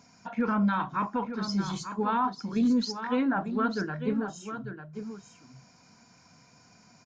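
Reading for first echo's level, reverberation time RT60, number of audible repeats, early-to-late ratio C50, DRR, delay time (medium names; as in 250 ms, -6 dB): -9.5 dB, no reverb, 1, no reverb, no reverb, 897 ms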